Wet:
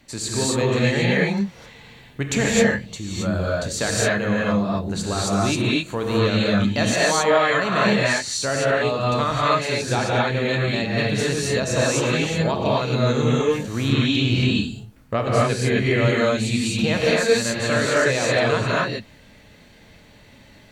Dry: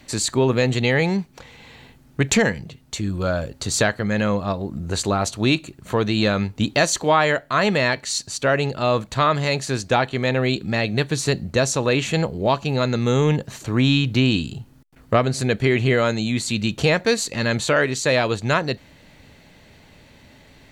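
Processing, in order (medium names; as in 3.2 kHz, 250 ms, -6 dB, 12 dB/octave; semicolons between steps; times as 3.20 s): gated-style reverb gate 290 ms rising, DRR -6 dB; trim -6.5 dB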